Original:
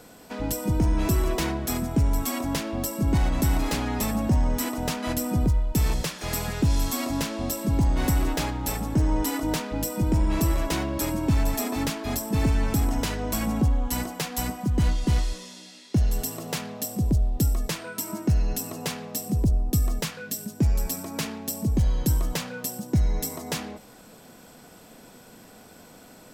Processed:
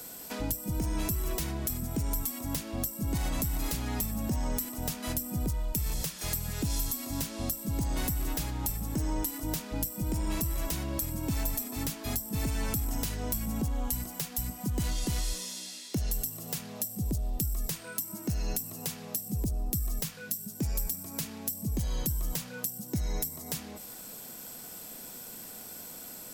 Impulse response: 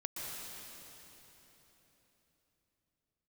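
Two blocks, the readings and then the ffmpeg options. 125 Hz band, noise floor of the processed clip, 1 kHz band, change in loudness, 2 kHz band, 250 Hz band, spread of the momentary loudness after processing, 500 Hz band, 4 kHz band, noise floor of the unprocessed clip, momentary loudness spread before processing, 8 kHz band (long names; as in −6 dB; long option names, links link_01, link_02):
−8.5 dB, −45 dBFS, −9.5 dB, −7.0 dB, −8.5 dB, −8.5 dB, 6 LU, −9.5 dB, −5.5 dB, −49 dBFS, 7 LU, −2.5 dB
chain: -filter_complex "[0:a]aemphasis=mode=production:type=75fm,acrossover=split=180[link_01][link_02];[link_01]alimiter=level_in=1.5dB:limit=-24dB:level=0:latency=1,volume=-1.5dB[link_03];[link_02]acompressor=threshold=-31dB:ratio=6[link_04];[link_03][link_04]amix=inputs=2:normalize=0,volume=-2dB"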